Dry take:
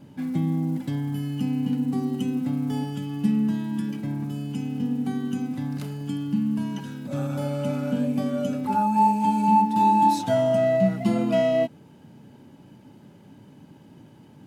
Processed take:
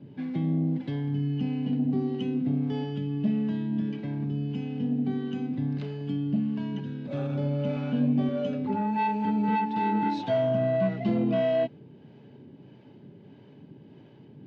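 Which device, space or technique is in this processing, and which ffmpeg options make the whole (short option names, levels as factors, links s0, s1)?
guitar amplifier with harmonic tremolo: -filter_complex "[0:a]acrossover=split=430[s0][s1];[s0]aeval=exprs='val(0)*(1-0.5/2+0.5/2*cos(2*PI*1.6*n/s))':c=same[s2];[s1]aeval=exprs='val(0)*(1-0.5/2-0.5/2*cos(2*PI*1.6*n/s))':c=same[s3];[s2][s3]amix=inputs=2:normalize=0,asoftclip=type=tanh:threshold=0.126,highpass=85,equalizer=f=130:t=q:w=4:g=5,equalizer=f=410:t=q:w=4:g=8,equalizer=f=890:t=q:w=4:g=-4,equalizer=f=1300:t=q:w=4:g=-6,lowpass=f=4000:w=0.5412,lowpass=f=4000:w=1.3066,asettb=1/sr,asplit=3[s4][s5][s6];[s4]atrim=end=7.754[s7];[s5]atrim=start=7.75:end=8.29,asetpts=PTS-STARTPTS,afade=t=in:d=0.004:c=qsin,afade=t=out:st=0.536:d=0.004:c=qsin,asplit=2[s8][s9];[s9]adelay=13,volume=0.562[s10];[s8][s10]amix=inputs=2:normalize=0,atrim=end_sample=23814[s11];[s6]atrim=start=8.286[s12];[s7][s11]acrossfade=d=0.004:c1=hsin:c2=qsin[s13];[s13][s12]acrossfade=d=0.004:c1=qsin:c2=hsin"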